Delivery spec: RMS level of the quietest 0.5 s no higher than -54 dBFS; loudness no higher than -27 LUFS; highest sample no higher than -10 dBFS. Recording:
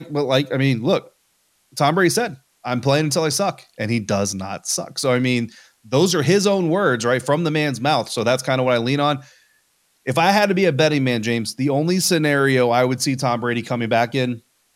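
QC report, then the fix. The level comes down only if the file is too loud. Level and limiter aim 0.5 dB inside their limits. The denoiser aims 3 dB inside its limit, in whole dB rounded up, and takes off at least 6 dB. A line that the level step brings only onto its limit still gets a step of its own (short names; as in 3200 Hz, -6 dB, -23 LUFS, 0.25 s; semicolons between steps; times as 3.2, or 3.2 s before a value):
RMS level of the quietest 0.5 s -64 dBFS: OK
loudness -19.0 LUFS: fail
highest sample -4.5 dBFS: fail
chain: gain -8.5 dB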